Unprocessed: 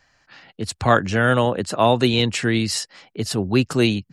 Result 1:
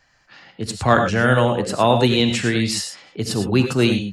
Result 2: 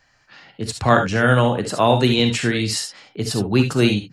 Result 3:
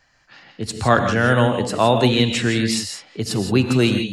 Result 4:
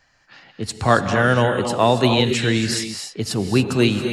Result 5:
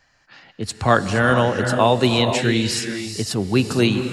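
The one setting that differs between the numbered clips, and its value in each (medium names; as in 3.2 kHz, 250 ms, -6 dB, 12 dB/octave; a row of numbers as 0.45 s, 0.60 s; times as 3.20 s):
gated-style reverb, gate: 130 ms, 90 ms, 190 ms, 310 ms, 500 ms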